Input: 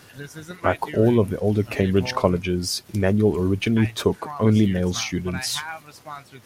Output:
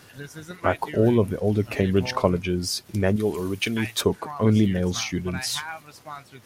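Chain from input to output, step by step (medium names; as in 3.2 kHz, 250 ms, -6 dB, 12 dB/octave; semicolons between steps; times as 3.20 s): 3.16–4.01 s: tilt EQ +2.5 dB/octave; trim -1.5 dB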